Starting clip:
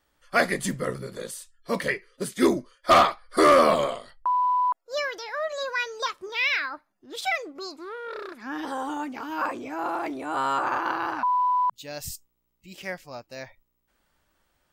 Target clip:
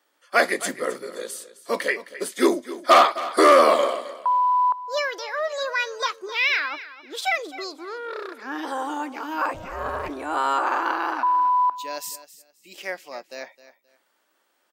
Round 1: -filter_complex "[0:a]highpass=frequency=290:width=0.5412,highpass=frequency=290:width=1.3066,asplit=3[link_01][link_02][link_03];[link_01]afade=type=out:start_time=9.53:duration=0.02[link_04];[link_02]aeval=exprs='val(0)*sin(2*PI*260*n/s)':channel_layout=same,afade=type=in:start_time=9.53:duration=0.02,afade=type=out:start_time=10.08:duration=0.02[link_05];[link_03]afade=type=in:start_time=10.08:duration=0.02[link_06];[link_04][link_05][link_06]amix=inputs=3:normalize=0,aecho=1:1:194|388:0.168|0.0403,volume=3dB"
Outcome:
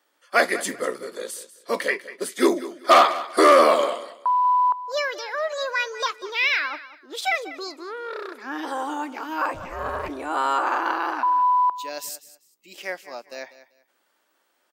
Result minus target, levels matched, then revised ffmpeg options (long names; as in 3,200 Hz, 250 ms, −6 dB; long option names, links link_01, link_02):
echo 69 ms early
-filter_complex "[0:a]highpass=frequency=290:width=0.5412,highpass=frequency=290:width=1.3066,asplit=3[link_01][link_02][link_03];[link_01]afade=type=out:start_time=9.53:duration=0.02[link_04];[link_02]aeval=exprs='val(0)*sin(2*PI*260*n/s)':channel_layout=same,afade=type=in:start_time=9.53:duration=0.02,afade=type=out:start_time=10.08:duration=0.02[link_05];[link_03]afade=type=in:start_time=10.08:duration=0.02[link_06];[link_04][link_05][link_06]amix=inputs=3:normalize=0,aecho=1:1:263|526:0.168|0.0403,volume=3dB"